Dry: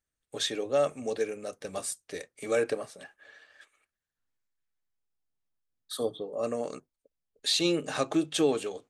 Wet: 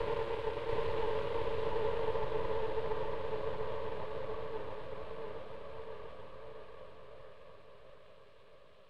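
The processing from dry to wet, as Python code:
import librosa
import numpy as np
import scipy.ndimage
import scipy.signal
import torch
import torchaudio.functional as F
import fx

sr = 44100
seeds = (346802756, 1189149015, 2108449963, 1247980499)

y = fx.dead_time(x, sr, dead_ms=0.17)
y = fx.paulstretch(y, sr, seeds[0], factor=31.0, window_s=0.5, from_s=2.71)
y = scipy.signal.sosfilt(scipy.signal.butter(4, 97.0, 'highpass', fs=sr, output='sos'), y)
y = fx.fixed_phaser(y, sr, hz=1200.0, stages=8)
y = np.maximum(y, 0.0)
y = scipy.signal.sosfilt(scipy.signal.butter(2, 3900.0, 'lowpass', fs=sr, output='sos'), y)
y = fx.echo_feedback(y, sr, ms=687, feedback_pct=42, wet_db=-3.5)
y = fx.band_widen(y, sr, depth_pct=40)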